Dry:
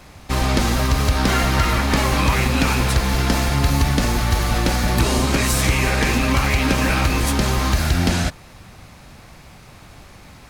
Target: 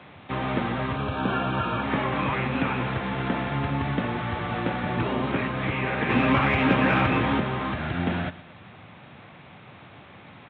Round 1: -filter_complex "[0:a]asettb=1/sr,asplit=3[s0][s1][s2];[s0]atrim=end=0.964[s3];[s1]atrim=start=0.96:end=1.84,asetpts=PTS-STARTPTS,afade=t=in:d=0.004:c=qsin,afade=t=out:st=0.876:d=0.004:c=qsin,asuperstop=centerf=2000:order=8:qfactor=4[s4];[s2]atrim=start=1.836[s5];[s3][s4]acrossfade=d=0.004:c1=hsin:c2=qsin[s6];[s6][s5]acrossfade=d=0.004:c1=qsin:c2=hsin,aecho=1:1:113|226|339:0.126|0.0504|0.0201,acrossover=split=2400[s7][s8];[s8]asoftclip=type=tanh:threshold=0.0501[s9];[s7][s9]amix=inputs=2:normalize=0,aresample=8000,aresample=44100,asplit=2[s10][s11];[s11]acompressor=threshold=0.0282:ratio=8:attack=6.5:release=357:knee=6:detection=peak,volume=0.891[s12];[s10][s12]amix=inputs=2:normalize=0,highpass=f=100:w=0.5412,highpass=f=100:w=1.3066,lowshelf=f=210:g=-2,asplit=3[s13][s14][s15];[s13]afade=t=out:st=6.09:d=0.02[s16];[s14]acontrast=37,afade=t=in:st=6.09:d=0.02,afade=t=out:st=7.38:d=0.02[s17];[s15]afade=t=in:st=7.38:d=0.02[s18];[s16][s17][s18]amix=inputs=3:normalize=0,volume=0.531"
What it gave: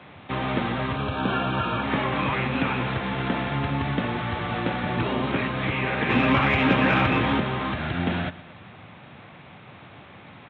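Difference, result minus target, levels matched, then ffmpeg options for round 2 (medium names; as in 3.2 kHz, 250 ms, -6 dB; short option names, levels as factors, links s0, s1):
compression: peak gain reduction -8 dB; saturation: distortion -5 dB
-filter_complex "[0:a]asettb=1/sr,asplit=3[s0][s1][s2];[s0]atrim=end=0.964[s3];[s1]atrim=start=0.96:end=1.84,asetpts=PTS-STARTPTS,afade=t=in:d=0.004:c=qsin,afade=t=out:st=0.876:d=0.004:c=qsin,asuperstop=centerf=2000:order=8:qfactor=4[s4];[s2]atrim=start=1.836[s5];[s3][s4]acrossfade=d=0.004:c1=hsin:c2=qsin[s6];[s6][s5]acrossfade=d=0.004:c1=qsin:c2=hsin,aecho=1:1:113|226|339:0.126|0.0504|0.0201,acrossover=split=2400[s7][s8];[s8]asoftclip=type=tanh:threshold=0.02[s9];[s7][s9]amix=inputs=2:normalize=0,aresample=8000,aresample=44100,asplit=2[s10][s11];[s11]acompressor=threshold=0.01:ratio=8:attack=6.5:release=357:knee=6:detection=peak,volume=0.891[s12];[s10][s12]amix=inputs=2:normalize=0,highpass=f=100:w=0.5412,highpass=f=100:w=1.3066,lowshelf=f=210:g=-2,asplit=3[s13][s14][s15];[s13]afade=t=out:st=6.09:d=0.02[s16];[s14]acontrast=37,afade=t=in:st=6.09:d=0.02,afade=t=out:st=7.38:d=0.02[s17];[s15]afade=t=in:st=7.38:d=0.02[s18];[s16][s17][s18]amix=inputs=3:normalize=0,volume=0.531"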